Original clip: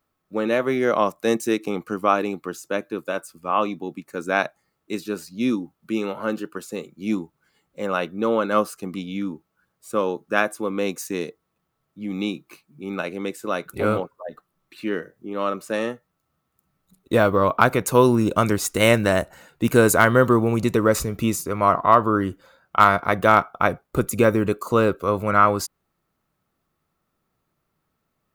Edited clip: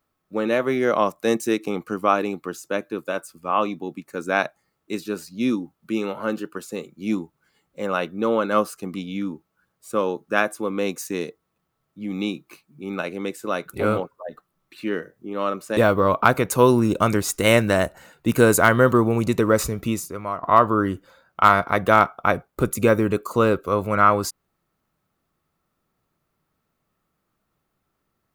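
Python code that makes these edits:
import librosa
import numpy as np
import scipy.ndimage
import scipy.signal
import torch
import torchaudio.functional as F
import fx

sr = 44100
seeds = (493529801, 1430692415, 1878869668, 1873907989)

y = fx.edit(x, sr, fx.cut(start_s=15.77, length_s=1.36),
    fx.fade_out_to(start_s=21.07, length_s=0.72, floor_db=-15.5), tone=tone)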